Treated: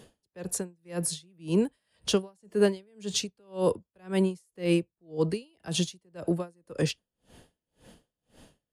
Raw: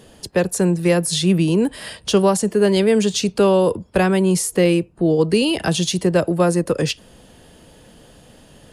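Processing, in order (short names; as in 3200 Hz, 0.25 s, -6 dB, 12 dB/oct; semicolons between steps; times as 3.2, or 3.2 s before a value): dB-linear tremolo 1.9 Hz, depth 40 dB; gain -5.5 dB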